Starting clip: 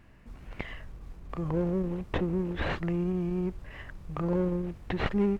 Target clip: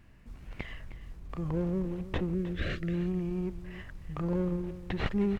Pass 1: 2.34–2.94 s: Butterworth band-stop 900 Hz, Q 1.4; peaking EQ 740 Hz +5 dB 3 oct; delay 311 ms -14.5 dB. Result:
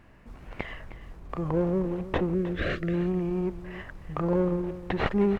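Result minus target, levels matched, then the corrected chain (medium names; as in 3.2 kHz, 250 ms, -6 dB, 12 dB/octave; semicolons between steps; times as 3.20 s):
1 kHz band +4.5 dB
2.34–2.94 s: Butterworth band-stop 900 Hz, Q 1.4; peaking EQ 740 Hz -5 dB 3 oct; delay 311 ms -14.5 dB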